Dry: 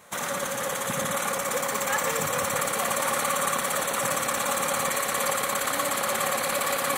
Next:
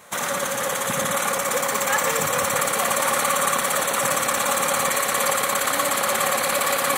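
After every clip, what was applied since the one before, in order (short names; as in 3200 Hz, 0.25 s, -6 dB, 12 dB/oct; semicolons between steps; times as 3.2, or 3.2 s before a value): low shelf 320 Hz -3 dB; gain +5 dB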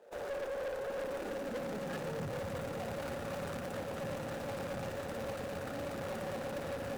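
median filter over 41 samples; high-pass sweep 460 Hz -> 88 Hz, 0.93–2.41; tube stage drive 30 dB, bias 0.4; gain -5 dB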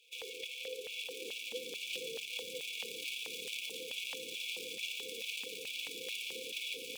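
small resonant body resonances 910/3400 Hz, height 15 dB, ringing for 45 ms; FFT band-reject 520–2200 Hz; LFO high-pass square 2.3 Hz 870–2400 Hz; gain +7 dB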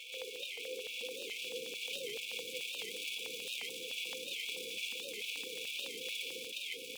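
reverse echo 0.511 s -3 dB; on a send at -20 dB: reverb RT60 3.8 s, pre-delay 50 ms; on the sum: record warp 78 rpm, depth 160 cents; gain -1.5 dB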